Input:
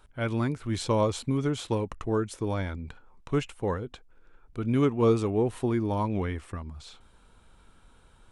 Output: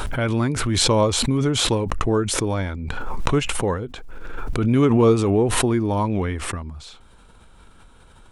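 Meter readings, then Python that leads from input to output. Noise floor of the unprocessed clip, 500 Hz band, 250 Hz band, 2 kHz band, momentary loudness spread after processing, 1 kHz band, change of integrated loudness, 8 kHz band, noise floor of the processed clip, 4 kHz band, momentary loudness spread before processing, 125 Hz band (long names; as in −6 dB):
−58 dBFS, +6.5 dB, +7.5 dB, +10.5 dB, 15 LU, +7.5 dB, +7.5 dB, +18.0 dB, −49 dBFS, +16.5 dB, 16 LU, +7.5 dB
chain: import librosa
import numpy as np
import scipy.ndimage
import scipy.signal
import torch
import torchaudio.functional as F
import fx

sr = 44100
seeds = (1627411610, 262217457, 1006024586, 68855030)

y = fx.pre_swell(x, sr, db_per_s=24.0)
y = y * 10.0 ** (6.0 / 20.0)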